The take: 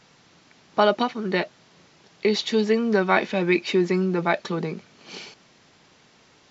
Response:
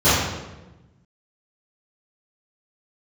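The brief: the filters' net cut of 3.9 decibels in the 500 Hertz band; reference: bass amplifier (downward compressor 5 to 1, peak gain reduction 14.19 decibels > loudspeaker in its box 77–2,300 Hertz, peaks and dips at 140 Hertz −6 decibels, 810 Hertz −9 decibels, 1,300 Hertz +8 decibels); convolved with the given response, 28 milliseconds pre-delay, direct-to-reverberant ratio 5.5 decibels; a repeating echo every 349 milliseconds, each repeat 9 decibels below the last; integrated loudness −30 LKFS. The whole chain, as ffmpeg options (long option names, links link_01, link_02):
-filter_complex "[0:a]equalizer=frequency=500:width_type=o:gain=-4.5,aecho=1:1:349|698|1047|1396:0.355|0.124|0.0435|0.0152,asplit=2[link_01][link_02];[1:a]atrim=start_sample=2205,adelay=28[link_03];[link_02][link_03]afir=irnorm=-1:irlink=0,volume=-29.5dB[link_04];[link_01][link_04]amix=inputs=2:normalize=0,acompressor=threshold=-30dB:ratio=5,highpass=frequency=77:width=0.5412,highpass=frequency=77:width=1.3066,equalizer=frequency=140:width_type=q:width=4:gain=-6,equalizer=frequency=810:width_type=q:width=4:gain=-9,equalizer=frequency=1300:width_type=q:width=4:gain=8,lowpass=frequency=2300:width=0.5412,lowpass=frequency=2300:width=1.3066,volume=4dB"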